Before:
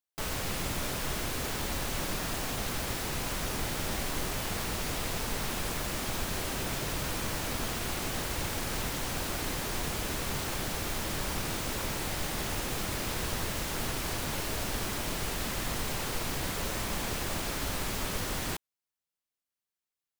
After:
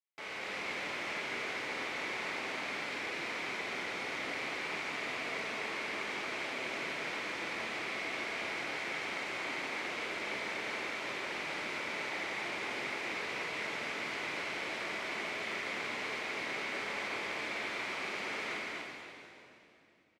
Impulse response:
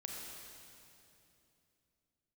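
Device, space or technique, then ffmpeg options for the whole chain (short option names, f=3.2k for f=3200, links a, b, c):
station announcement: -filter_complex "[0:a]highpass=330,lowpass=3.9k,equalizer=f=2.2k:t=o:w=0.42:g=11,aecho=1:1:52.48|247.8:0.282|0.708[a];[1:a]atrim=start_sample=2205[b];[a][b]afir=irnorm=-1:irlink=0,volume=-4dB"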